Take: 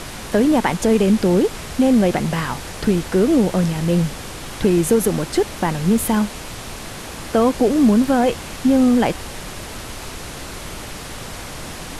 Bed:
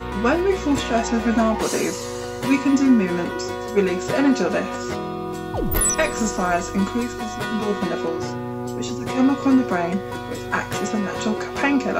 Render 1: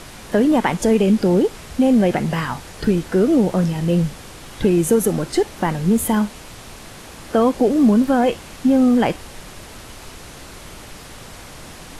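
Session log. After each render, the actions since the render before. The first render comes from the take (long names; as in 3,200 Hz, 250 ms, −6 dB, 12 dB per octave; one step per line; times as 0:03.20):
noise reduction from a noise print 6 dB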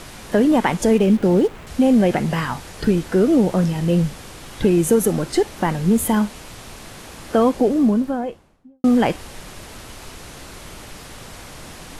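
0:00.98–0:01.67: running median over 9 samples
0:07.37–0:08.84: fade out and dull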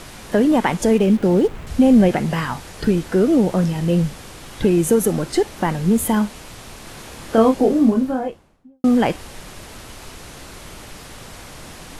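0:01.44–0:02.09: low-shelf EQ 170 Hz +8.5 dB
0:06.84–0:08.28: double-tracking delay 27 ms −4.5 dB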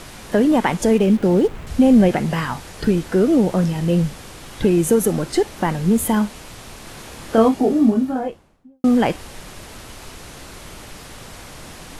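0:07.48–0:08.16: notch comb filter 520 Hz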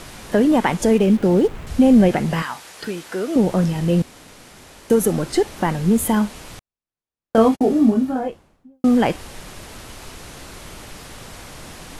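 0:02.42–0:03.36: high-pass filter 900 Hz 6 dB per octave
0:04.02–0:04.90: fill with room tone
0:06.59–0:07.61: noise gate −24 dBFS, range −59 dB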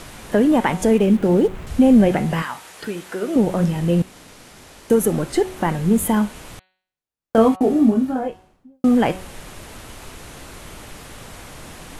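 dynamic equaliser 5,000 Hz, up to −5 dB, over −48 dBFS, Q 1.7
hum removal 186.1 Hz, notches 24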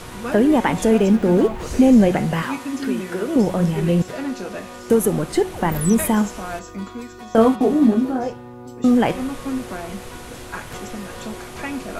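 mix in bed −9.5 dB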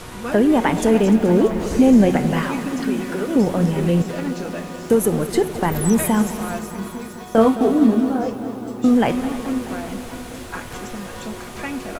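single-tap delay 298 ms −16.5 dB
feedback echo at a low word length 213 ms, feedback 80%, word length 7 bits, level −14 dB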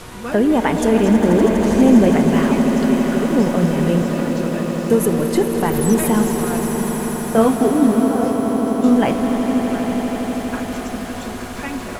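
echo that builds up and dies away 81 ms, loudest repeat 8, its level −13 dB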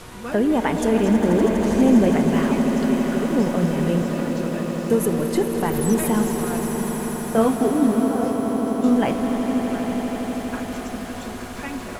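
level −4 dB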